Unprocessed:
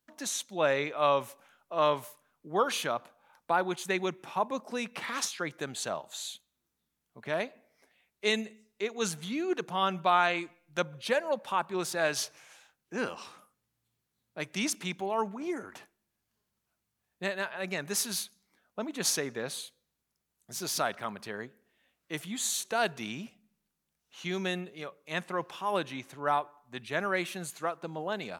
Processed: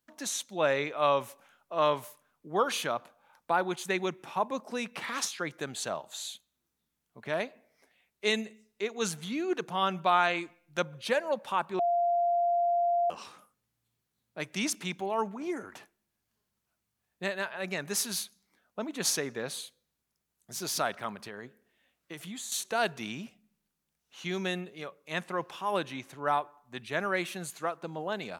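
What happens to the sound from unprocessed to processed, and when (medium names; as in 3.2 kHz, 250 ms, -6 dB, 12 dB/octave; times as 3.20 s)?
11.79–13.10 s: bleep 694 Hz -23.5 dBFS
21.11–22.52 s: compression, threshold -37 dBFS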